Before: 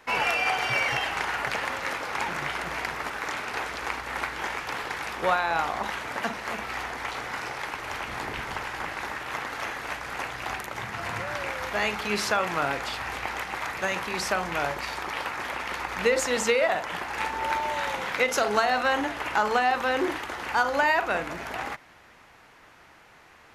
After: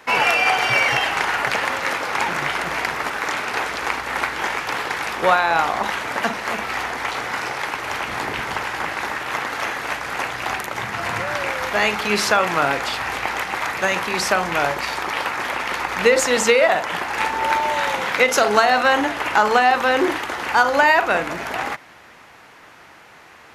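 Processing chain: HPF 110 Hz 6 dB/oct; gain +8 dB

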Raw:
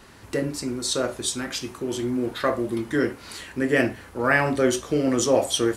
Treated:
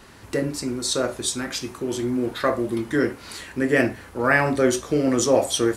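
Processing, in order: dynamic EQ 3000 Hz, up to -5 dB, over -49 dBFS, Q 6.4; gain +1.5 dB

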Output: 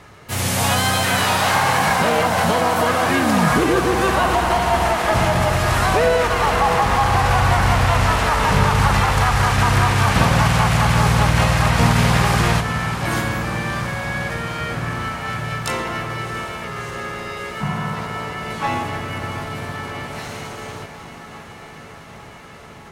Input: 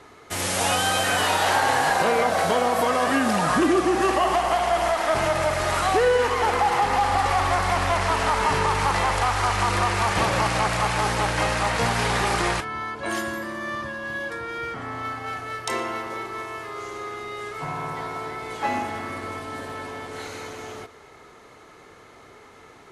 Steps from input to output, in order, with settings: resonant low shelf 210 Hz +7.5 dB, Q 1.5; diffused feedback echo 0.703 s, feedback 76%, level -12 dB; harmoniser +5 st -4 dB; gain +2 dB

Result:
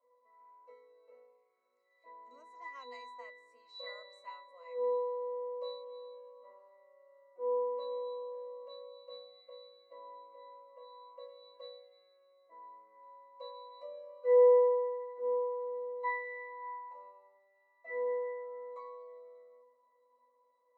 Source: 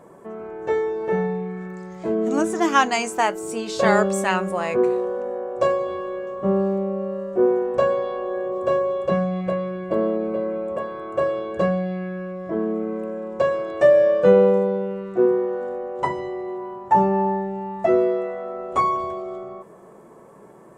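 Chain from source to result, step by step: HPF 550 Hz 24 dB/oct; high shelf 2900 Hz +11.5 dB; octave resonator B, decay 0.76 s

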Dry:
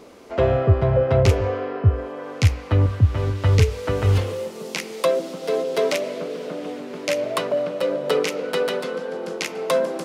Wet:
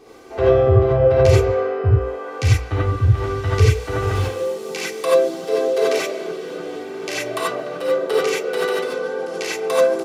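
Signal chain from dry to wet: comb 2.6 ms, depth 61%; non-linear reverb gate 0.11 s rising, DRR -6 dB; gain -5.5 dB

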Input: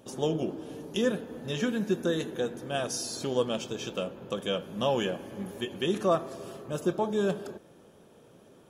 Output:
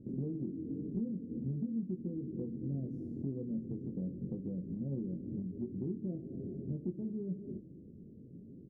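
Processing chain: inverse Chebyshev low-pass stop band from 1000 Hz, stop band 60 dB; compressor 6:1, threshold -44 dBFS, peak gain reduction 16 dB; doubler 22 ms -5.5 dB; gain +7.5 dB

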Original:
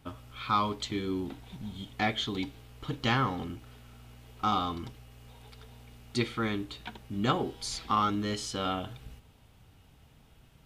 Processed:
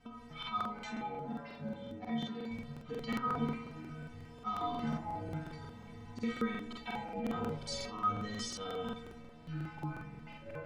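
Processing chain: spectral trails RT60 0.34 s; LPF 7700 Hz; high shelf 3100 Hz -8.5 dB; auto swell 0.143 s; limiter -29.5 dBFS, peak gain reduction 12.5 dB; 0.63–2.51 rippled Chebyshev high-pass 160 Hz, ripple 9 dB; metallic resonator 230 Hz, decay 0.4 s, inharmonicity 0.008; on a send: analogue delay 0.161 s, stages 2048, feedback 57%, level -16.5 dB; on the sum: echoes that change speed 0.219 s, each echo -7 st, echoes 2, each echo -6 dB; crackling interface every 0.18 s, samples 2048, repeat, from 0.38; gain +16 dB

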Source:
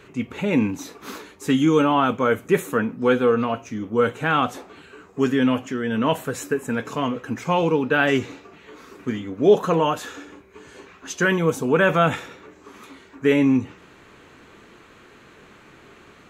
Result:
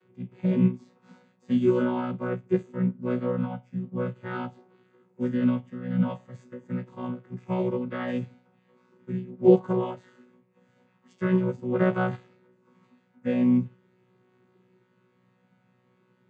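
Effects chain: chord vocoder bare fifth, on B2; harmonic-percussive split percussive -9 dB; upward expander 1.5:1, over -37 dBFS

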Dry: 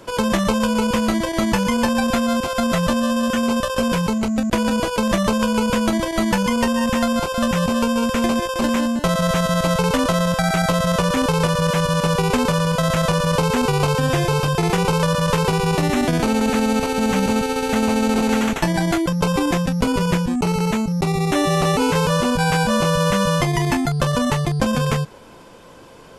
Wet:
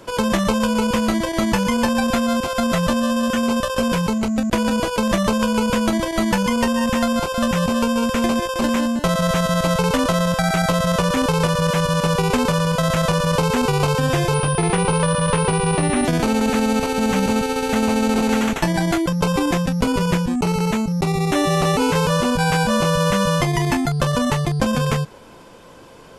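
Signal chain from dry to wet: 14.34–16.05 pulse-width modulation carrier 9400 Hz

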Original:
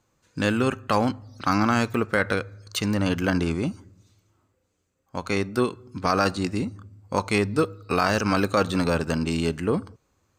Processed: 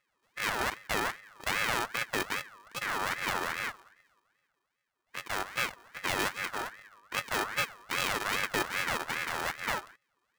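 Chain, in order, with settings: sample sorter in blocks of 64 samples; careless resampling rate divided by 3×, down none, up hold; ring modulator with a swept carrier 1500 Hz, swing 30%, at 2.5 Hz; gain -6.5 dB

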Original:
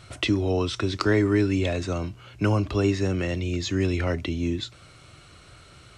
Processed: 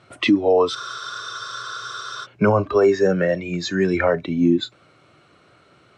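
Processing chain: LPF 1300 Hz 6 dB/oct; spectral noise reduction 14 dB; HPF 210 Hz 12 dB/oct; spectral freeze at 0.76, 1.49 s; maximiser +22 dB; gain -6.5 dB

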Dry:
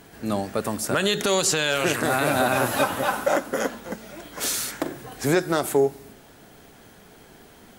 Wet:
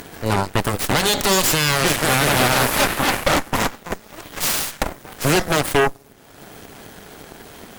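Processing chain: notches 60/120/180/240 Hz; added harmonics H 7 -22 dB, 8 -6 dB, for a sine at -9 dBFS; upward compressor, threshold -24 dBFS

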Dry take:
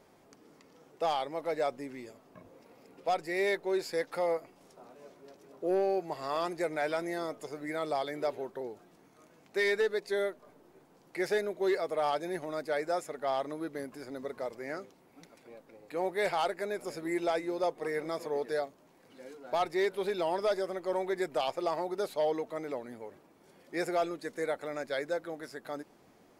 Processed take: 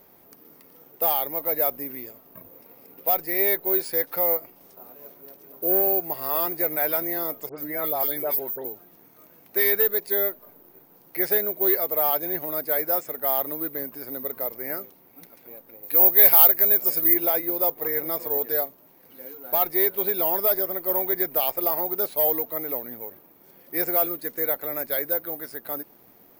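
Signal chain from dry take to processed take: careless resampling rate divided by 3×, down filtered, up zero stuff; 7.49–8.65 dispersion highs, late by 91 ms, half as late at 2300 Hz; 15.83–17.14 high shelf 3800 Hz +10.5 dB; gain +3 dB

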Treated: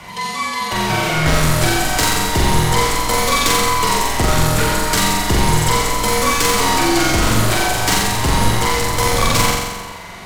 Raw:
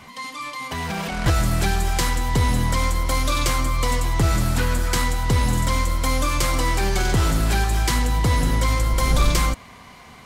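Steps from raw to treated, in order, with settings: hard clip -18 dBFS, distortion -12 dB; flutter echo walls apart 7.5 m, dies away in 1.2 s; frequency shift -50 Hz; low shelf 64 Hz -6.5 dB; gain +7.5 dB

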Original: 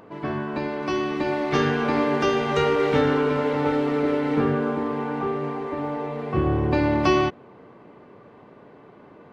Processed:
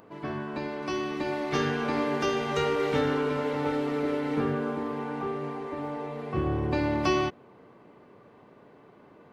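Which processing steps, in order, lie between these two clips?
high shelf 5900 Hz +9.5 dB; gain -6 dB

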